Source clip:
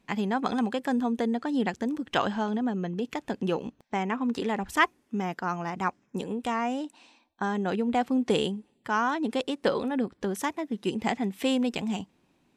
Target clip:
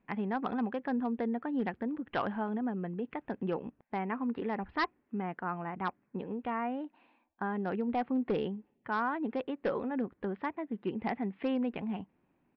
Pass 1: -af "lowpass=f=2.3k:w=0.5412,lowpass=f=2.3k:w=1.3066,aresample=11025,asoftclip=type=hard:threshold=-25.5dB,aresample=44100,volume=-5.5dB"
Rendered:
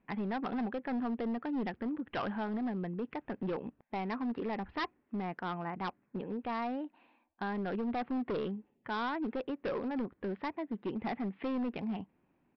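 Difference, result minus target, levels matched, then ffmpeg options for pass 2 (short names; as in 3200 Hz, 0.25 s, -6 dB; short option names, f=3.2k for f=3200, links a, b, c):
hard clip: distortion +9 dB
-af "lowpass=f=2.3k:w=0.5412,lowpass=f=2.3k:w=1.3066,aresample=11025,asoftclip=type=hard:threshold=-18.5dB,aresample=44100,volume=-5.5dB"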